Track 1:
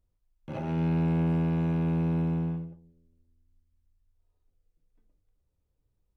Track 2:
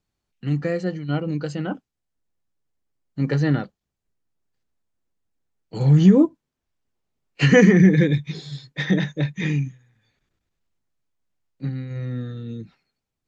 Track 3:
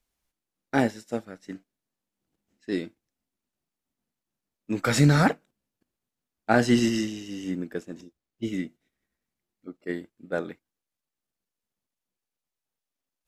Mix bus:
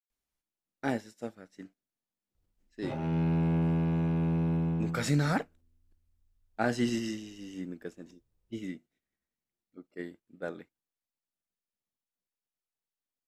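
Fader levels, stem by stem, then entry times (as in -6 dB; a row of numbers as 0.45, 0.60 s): -1.5 dB, off, -8.5 dB; 2.35 s, off, 0.10 s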